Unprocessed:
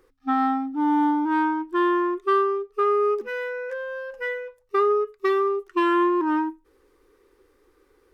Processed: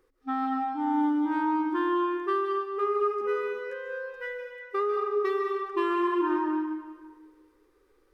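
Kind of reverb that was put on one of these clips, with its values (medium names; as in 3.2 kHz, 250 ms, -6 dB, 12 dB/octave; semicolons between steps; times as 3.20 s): algorithmic reverb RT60 1.5 s, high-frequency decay 0.85×, pre-delay 105 ms, DRR 1.5 dB; trim -7.5 dB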